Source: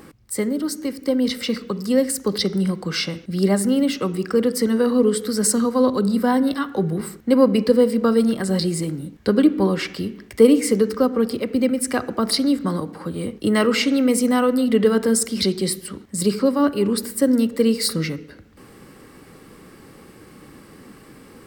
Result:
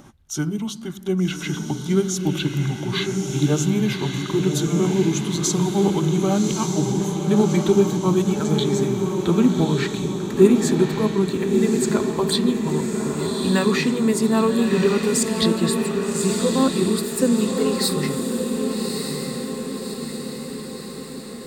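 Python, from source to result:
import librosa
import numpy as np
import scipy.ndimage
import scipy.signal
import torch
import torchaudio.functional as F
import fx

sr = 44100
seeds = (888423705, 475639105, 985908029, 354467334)

y = fx.pitch_glide(x, sr, semitones=-6.0, runs='ending unshifted')
y = fx.echo_diffused(y, sr, ms=1182, feedback_pct=58, wet_db=-4.0)
y = y * librosa.db_to_amplitude(-1.0)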